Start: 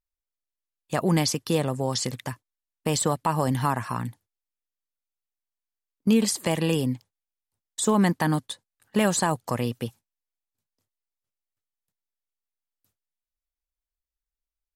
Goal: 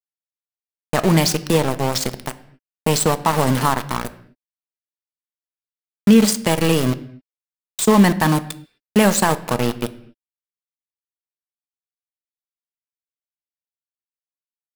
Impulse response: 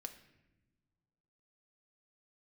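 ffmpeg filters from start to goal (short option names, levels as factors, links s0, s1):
-filter_complex "[0:a]aeval=exprs='val(0)*gte(abs(val(0)),0.0531)':c=same,asplit=2[s0][s1];[1:a]atrim=start_sample=2205,afade=t=out:st=0.32:d=0.01,atrim=end_sample=14553[s2];[s1][s2]afir=irnorm=-1:irlink=0,volume=2.24[s3];[s0][s3]amix=inputs=2:normalize=0"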